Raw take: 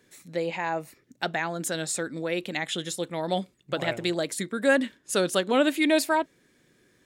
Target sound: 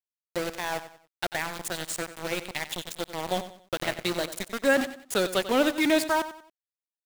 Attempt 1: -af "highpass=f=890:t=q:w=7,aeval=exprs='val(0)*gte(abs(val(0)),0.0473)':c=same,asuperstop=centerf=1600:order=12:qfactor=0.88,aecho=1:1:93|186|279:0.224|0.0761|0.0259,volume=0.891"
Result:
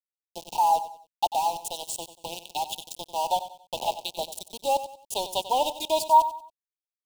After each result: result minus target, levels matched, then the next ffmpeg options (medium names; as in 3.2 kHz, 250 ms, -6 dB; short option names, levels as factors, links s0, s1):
2 kHz band -17.5 dB; 1 kHz band +8.5 dB
-af "highpass=f=890:t=q:w=7,aeval=exprs='val(0)*gte(abs(val(0)),0.0473)':c=same,aecho=1:1:93|186|279:0.224|0.0761|0.0259,volume=0.891"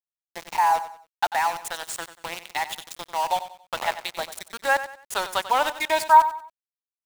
1 kHz band +8.5 dB
-af "aeval=exprs='val(0)*gte(abs(val(0)),0.0473)':c=same,aecho=1:1:93|186|279:0.224|0.0761|0.0259,volume=0.891"